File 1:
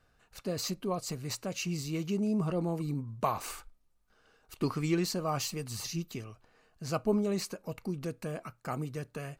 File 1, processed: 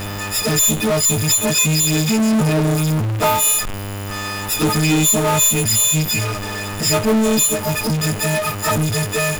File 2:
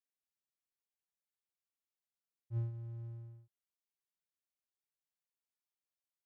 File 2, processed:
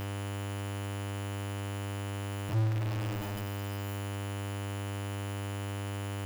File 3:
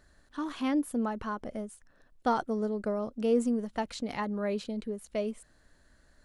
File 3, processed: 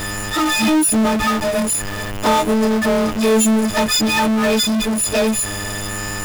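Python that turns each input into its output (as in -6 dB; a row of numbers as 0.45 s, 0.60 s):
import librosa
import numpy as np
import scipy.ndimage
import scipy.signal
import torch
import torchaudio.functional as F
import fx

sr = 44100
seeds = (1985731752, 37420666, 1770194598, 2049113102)

y = fx.freq_snap(x, sr, grid_st=6)
y = fx.low_shelf(y, sr, hz=64.0, db=2.0)
y = fx.env_flanger(y, sr, rest_ms=6.2, full_db=-25.5)
y = fx.dmg_buzz(y, sr, base_hz=100.0, harmonics=30, level_db=-61.0, tilt_db=-3, odd_only=False)
y = fx.power_curve(y, sr, exponent=0.35)
y = y * 10.0 ** (6.5 / 20.0)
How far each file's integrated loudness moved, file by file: +18.0 LU, +7.5 LU, +15.5 LU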